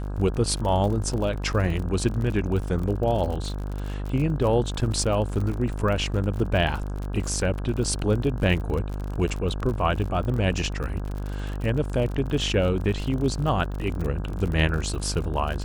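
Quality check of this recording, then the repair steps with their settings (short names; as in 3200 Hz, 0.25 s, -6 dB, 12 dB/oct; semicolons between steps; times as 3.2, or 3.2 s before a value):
buzz 50 Hz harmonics 33 -30 dBFS
crackle 50/s -30 dBFS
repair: de-click; de-hum 50 Hz, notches 33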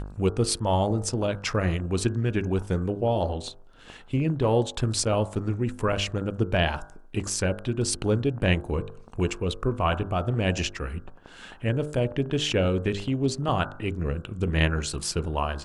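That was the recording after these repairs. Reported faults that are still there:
none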